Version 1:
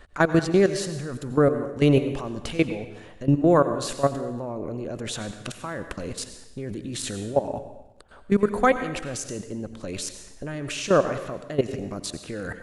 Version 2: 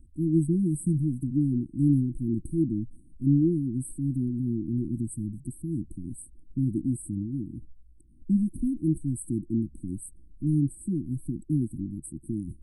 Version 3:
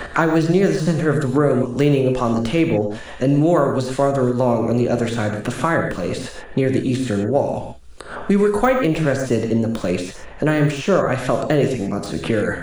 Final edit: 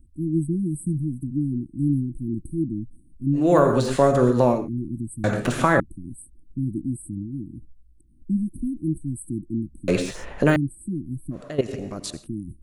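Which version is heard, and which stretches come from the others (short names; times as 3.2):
2
3.44–4.57 from 3, crossfade 0.24 s
5.24–5.8 from 3
9.88–10.56 from 3
11.38–12.2 from 1, crossfade 0.16 s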